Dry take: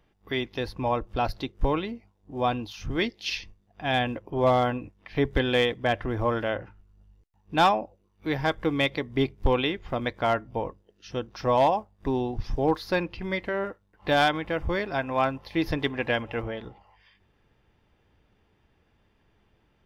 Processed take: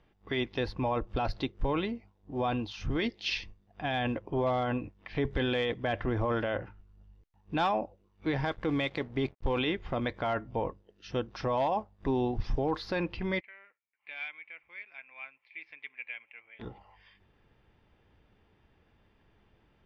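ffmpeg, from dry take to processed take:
-filter_complex "[0:a]asettb=1/sr,asplit=3[a][b][c];[a]atrim=end=8.514[d];[b]atrim=start=8.51:end=9.59,asetpts=PTS-STARTPTS,afade=t=in:d=0.004:c=qsin,afade=t=out:st=1.076:d=0.004:c=qsin,aeval=exprs='sgn(val(0))*max(abs(val(0))-0.00335,0)':c=same[e];[c]atrim=start=9.586[f];[d][e]acrossfade=d=0.004:c1=hsin:c2=qsin[g];[g][f]acrossfade=d=0.004:c1=qsin:c2=hsin,asplit=3[h][i][j];[h]afade=t=out:st=13.39:d=0.02[k];[i]bandpass=f=2.3k:t=q:w=14,afade=t=in:st=13.39:d=0.02,afade=t=out:st=16.59:d=0.02[l];[j]afade=t=in:st=16.59:d=0.02[m];[k][l][m]amix=inputs=3:normalize=0,lowpass=4.7k,alimiter=limit=-21.5dB:level=0:latency=1:release=12"

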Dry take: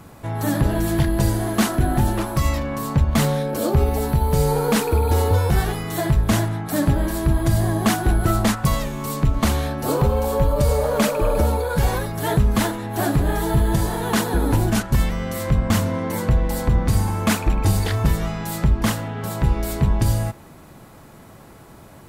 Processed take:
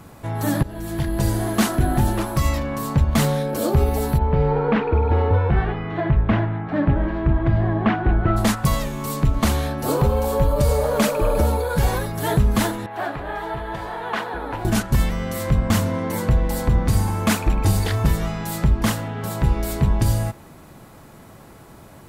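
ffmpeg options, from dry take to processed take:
-filter_complex "[0:a]asplit=3[a][b][c];[a]afade=t=out:st=4.17:d=0.02[d];[b]lowpass=f=2.6k:w=0.5412,lowpass=f=2.6k:w=1.3066,afade=t=in:st=4.17:d=0.02,afade=t=out:st=8.36:d=0.02[e];[c]afade=t=in:st=8.36:d=0.02[f];[d][e][f]amix=inputs=3:normalize=0,asettb=1/sr,asplit=3[g][h][i];[g]atrim=end=12.864[j];[h]atrim=start=12.86:end=14.65,asetpts=PTS-STARTPTS,afade=t=in:d=0.004:c=qsin,afade=t=out:st=1.786:d=0.004:c=qsin,acrossover=split=500 3300:gain=0.158 1 0.0708[k][l][m];[k][l][m]amix=inputs=3:normalize=0[n];[i]atrim=start=14.646[o];[j][n]acrossfade=d=0.004:c1=hsin:c2=qsin[p];[p][o]acrossfade=d=0.004:c1=qsin:c2=hsin,asplit=2[q][r];[q]atrim=end=0.63,asetpts=PTS-STARTPTS,afade=t=out:st=0.626:d=0.004:c=hsin:silence=0.133352[s];[r]atrim=start=0.63,asetpts=PTS-STARTPTS,afade=t=in:d=0.76:silence=0.133352[t];[s][t]concat=n=2:v=0:a=1"

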